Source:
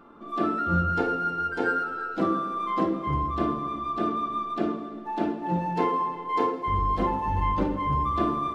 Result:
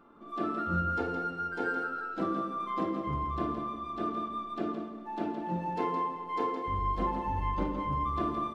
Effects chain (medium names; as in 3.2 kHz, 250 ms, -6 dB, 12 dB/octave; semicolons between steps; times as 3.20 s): delay 167 ms -7.5 dB; trim -7 dB